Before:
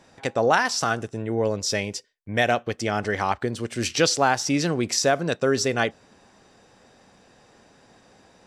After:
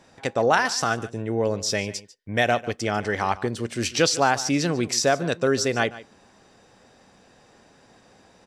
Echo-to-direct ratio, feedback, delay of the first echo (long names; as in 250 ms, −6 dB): −17.5 dB, repeats not evenly spaced, 146 ms